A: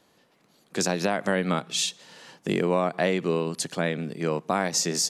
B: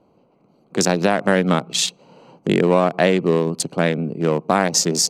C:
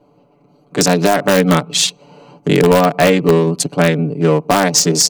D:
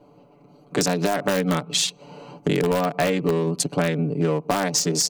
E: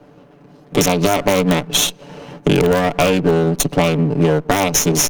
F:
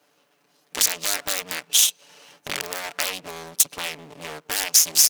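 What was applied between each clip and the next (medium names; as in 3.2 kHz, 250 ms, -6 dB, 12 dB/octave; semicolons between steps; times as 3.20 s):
local Wiener filter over 25 samples; trim +8.5 dB
comb 6.9 ms, depth 96%; in parallel at -5 dB: integer overflow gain 4.5 dB; on the sum: trim -1 dB
compression 4:1, threshold -20 dBFS, peak gain reduction 11.5 dB
comb filter that takes the minimum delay 0.31 ms; trim +7.5 dB
differentiator; loudspeaker Doppler distortion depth 0.8 ms; trim +2.5 dB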